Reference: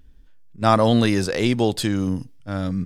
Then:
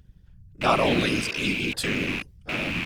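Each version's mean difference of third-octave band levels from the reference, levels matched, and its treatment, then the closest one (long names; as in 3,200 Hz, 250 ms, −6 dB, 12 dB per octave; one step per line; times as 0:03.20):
9.0 dB: loose part that buzzes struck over −33 dBFS, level −12 dBFS
healed spectral selection 0:01.16–0:01.72, 330–2,100 Hz both
parametric band 120 Hz −12 dB 1.1 octaves
random phases in short frames
level −3 dB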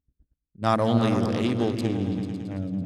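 6.0 dB: adaptive Wiener filter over 41 samples
high-pass filter 47 Hz 12 dB per octave
on a send: echo whose low-pass opens from repeat to repeat 111 ms, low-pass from 200 Hz, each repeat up 2 octaves, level −3 dB
on the sum: noise gate −51 dBFS, range −21 dB
level −5.5 dB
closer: second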